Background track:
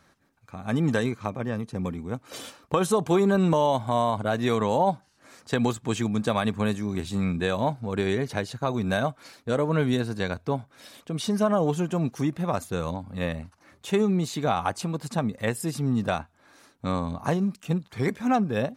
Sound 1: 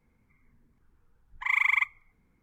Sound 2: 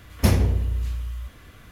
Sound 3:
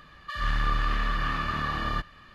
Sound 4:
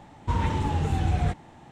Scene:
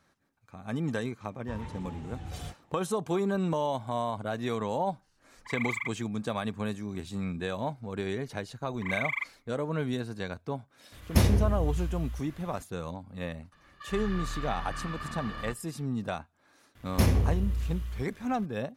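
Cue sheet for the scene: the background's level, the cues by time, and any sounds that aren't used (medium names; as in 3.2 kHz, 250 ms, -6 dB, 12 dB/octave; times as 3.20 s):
background track -7.5 dB
1.20 s: add 4 -16 dB
4.04 s: add 1 -10 dB
7.40 s: add 1 -8 dB
10.92 s: add 2 -4 dB
13.52 s: add 3 -10 dB
16.75 s: add 2 -8 dB + waveshaping leveller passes 1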